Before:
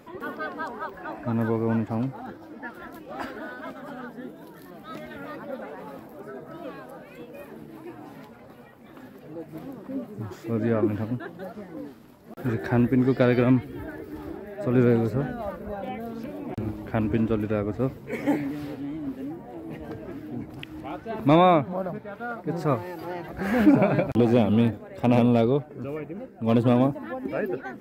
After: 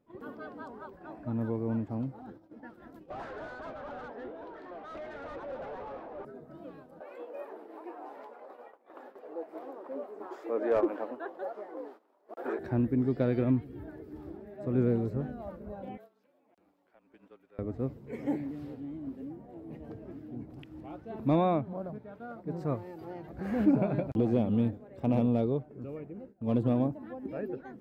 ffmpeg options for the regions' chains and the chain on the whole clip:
ffmpeg -i in.wav -filter_complex "[0:a]asettb=1/sr,asplit=3[link_01][link_02][link_03];[link_01]atrim=end=3.104[link_04];[link_02]atrim=start=3.1:end=6.25,asetpts=PTS-STARTPTS,afade=type=in:duration=0.004:curve=qsin,afade=type=out:start_time=3.146:duration=0.004:curve=qsin,highpass=460,lowpass=3800,asplit=2[link_05][link_06];[link_06]highpass=frequency=720:poles=1,volume=27dB,asoftclip=type=tanh:threshold=-21.5dB[link_07];[link_05][link_07]amix=inputs=2:normalize=0,lowpass=frequency=1300:poles=1,volume=-6dB[link_08];[link_03]atrim=start=6.246[link_09];[link_04][link_08]acrossfade=duration=0.004:curve1=hsin:curve2=qsin[link_10];[link_10][link_09]acrossfade=duration=0.004:curve1=qsin:curve2=hsin,asettb=1/sr,asplit=3[link_11][link_12][link_13];[link_11]atrim=end=7.004[link_14];[link_12]atrim=start=7:end=12.59,asetpts=PTS-STARTPTS,afade=type=in:duration=0.004:curve=qsin,afade=type=out:start_time=5.586:duration=0.004:curve=qsin,highpass=frequency=360:width=0.5412,highpass=frequency=360:width=1.3066,equalizer=frequency=920:width=0.45:gain=14,asoftclip=type=hard:threshold=-11dB[link_15];[link_13]atrim=start=12.586[link_16];[link_14][link_15]acrossfade=duration=0.004:curve1=hsin:curve2=qsin[link_17];[link_17][link_16]acrossfade=duration=0.004:curve1=qsin:curve2=hsin,asettb=1/sr,asplit=3[link_18][link_19][link_20];[link_18]atrim=end=15.974[link_21];[link_19]atrim=start=15.97:end=17.59,asetpts=PTS-STARTPTS,afade=type=in:duration=0.004:curve=qsin,afade=type=out:start_time=1.616:duration=0.004:curve=qsin,highpass=800,acompressor=threshold=-39dB:ratio=4:attack=3.2:release=140:knee=1:detection=peak,afreqshift=-28[link_22];[link_20]atrim=start=17.586[link_23];[link_21][link_22]acrossfade=duration=0.004:curve1=hsin:curve2=qsin[link_24];[link_24][link_23]acrossfade=duration=0.004:curve1=qsin:curve2=hsin,equalizer=frequency=1800:width=0.46:gain=-8,agate=range=-14dB:threshold=-44dB:ratio=16:detection=peak,lowpass=frequency=2800:poles=1,volume=-6dB" out.wav

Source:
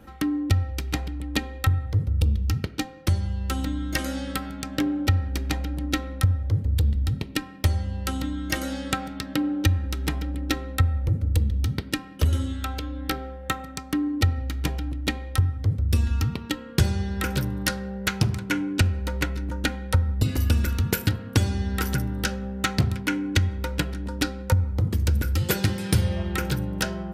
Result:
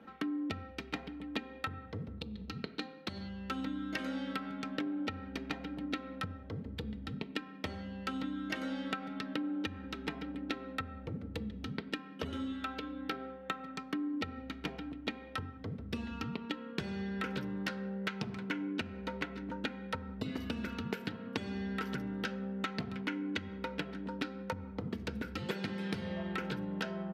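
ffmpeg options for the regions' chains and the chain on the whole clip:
ffmpeg -i in.wav -filter_complex "[0:a]asettb=1/sr,asplit=3[link_01][link_02][link_03];[link_01]atrim=end=2.174[link_04];[link_02]atrim=start=2.17:end=3.29,asetpts=PTS-STARTPTS,afade=type=in:duration=0.004:curve=qsin,afade=type=out:start_time=1.116:duration=0.004:curve=qsin,equalizer=frequency=4100:width=7.7:gain=15,acompressor=threshold=-22dB:ratio=6:attack=3.2:release=140:knee=1:detection=peak[link_05];[link_03]atrim=start=3.286[link_06];[link_04][link_05]acrossfade=duration=0.004:curve1=hsin:curve2=qsin[link_07];[link_07][link_06]acrossfade=duration=0.004:curve1=qsin:curve2=hsin,acrossover=split=150 4100:gain=0.0708 1 0.0794[link_08][link_09][link_10];[link_08][link_09][link_10]amix=inputs=3:normalize=0,aecho=1:1:4.5:0.39,acompressor=threshold=-28dB:ratio=6,volume=-5dB" out.wav

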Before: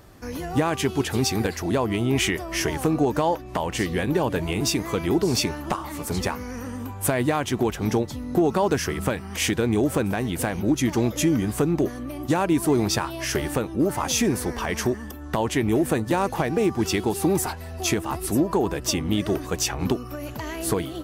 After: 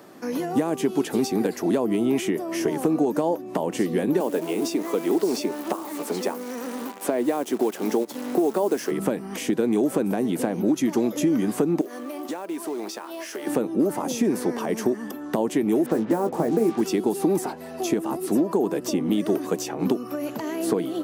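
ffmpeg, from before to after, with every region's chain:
ffmpeg -i in.wav -filter_complex "[0:a]asettb=1/sr,asplit=3[link_01][link_02][link_03];[link_01]atrim=end=4.204[link_04];[link_02]atrim=start=4.2:end=8.91,asetpts=PTS-STARTPTS,afade=type=in:duration=0.004:curve=qsin,afade=type=out:start_time=4.706:duration=0.004:curve=qsin,highpass=310,acrusher=bits=7:dc=4:mix=0:aa=0.000001[link_05];[link_03]atrim=start=8.906[link_06];[link_04][link_05]acrossfade=duration=0.004:curve1=hsin:curve2=qsin[link_07];[link_07][link_06]acrossfade=duration=0.004:curve1=qsin:curve2=hsin,asettb=1/sr,asplit=3[link_08][link_09][link_10];[link_08]atrim=end=11.814[link_11];[link_09]atrim=start=11.81:end=13.47,asetpts=PTS-STARTPTS,afade=type=in:duration=0.004:curve=qsin,afade=type=out:start_time=1.656:duration=0.004:curve=qsin,highpass=400,acrusher=bits=4:mode=log:mix=0:aa=0.000001,acompressor=threshold=-34dB:ratio=4:attack=3.2:release=140:knee=1:detection=peak[link_12];[link_10]atrim=start=13.466[link_13];[link_11][link_12]acrossfade=duration=0.004:curve1=hsin:curve2=qsin[link_14];[link_14][link_13]acrossfade=duration=0.004:curve1=qsin:curve2=hsin,asettb=1/sr,asplit=3[link_15][link_16][link_17];[link_15]atrim=end=15.864[link_18];[link_16]atrim=start=15.86:end=16.81,asetpts=PTS-STARTPTS,afade=type=in:duration=0.004:curve=qsin,afade=type=out:start_time=0.946:duration=0.004:curve=qsin,lowpass=frequency=1900:width=0.5412,lowpass=frequency=1900:width=1.3066,acrusher=bits=5:mix=0:aa=0.5,asplit=2[link_19][link_20];[link_20]adelay=18,volume=-8dB[link_21];[link_19][link_21]amix=inputs=2:normalize=0,atrim=end_sample=41895[link_22];[link_17]atrim=start=16.806[link_23];[link_18][link_22]acrossfade=duration=0.004:curve1=hsin:curve2=qsin[link_24];[link_24][link_23]acrossfade=duration=0.004:curve1=qsin:curve2=hsin,highpass=frequency=200:width=0.5412,highpass=frequency=200:width=1.3066,tiltshelf=frequency=1100:gain=3,acrossover=split=670|6800[link_25][link_26][link_27];[link_25]acompressor=threshold=-23dB:ratio=4[link_28];[link_26]acompressor=threshold=-41dB:ratio=4[link_29];[link_27]acompressor=threshold=-43dB:ratio=4[link_30];[link_28][link_29][link_30]amix=inputs=3:normalize=0,volume=4dB" out.wav

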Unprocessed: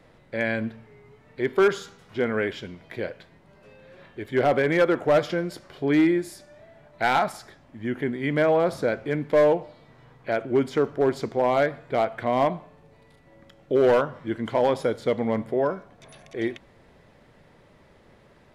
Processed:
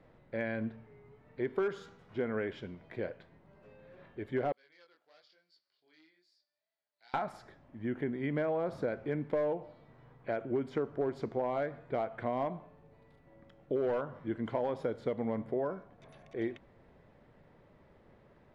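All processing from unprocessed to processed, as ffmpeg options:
ffmpeg -i in.wav -filter_complex "[0:a]asettb=1/sr,asplit=3[link_01][link_02][link_03];[link_01]atrim=end=4.524[link_04];[link_02]atrim=start=4.52:end=7.14,asetpts=PTS-STARTPTS,afade=type=in:duration=0.004:curve=qsin,afade=type=out:start_time=2.616:duration=0.004:curve=qsin,flanger=delay=18:depth=7.6:speed=1,bandpass=frequency=4600:width_type=q:width=7.5[link_05];[link_03]atrim=start=7.136[link_06];[link_04][link_05]acrossfade=duration=0.004:curve1=hsin:curve2=qsin[link_07];[link_07][link_06]acrossfade=duration=0.004:curve1=qsin:curve2=hsin,acompressor=threshold=-23dB:ratio=6,lowpass=frequency=1500:poles=1,volume=-5.5dB" out.wav

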